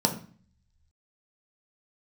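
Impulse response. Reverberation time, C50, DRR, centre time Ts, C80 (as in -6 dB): 0.45 s, 10.5 dB, 2.5 dB, 13 ms, 15.0 dB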